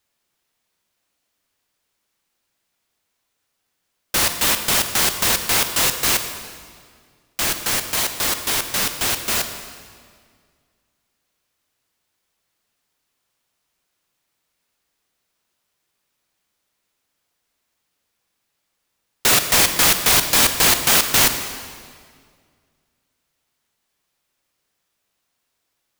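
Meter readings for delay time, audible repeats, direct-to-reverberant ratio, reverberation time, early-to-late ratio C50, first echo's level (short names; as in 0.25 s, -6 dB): none, none, 7.5 dB, 2.0 s, 8.5 dB, none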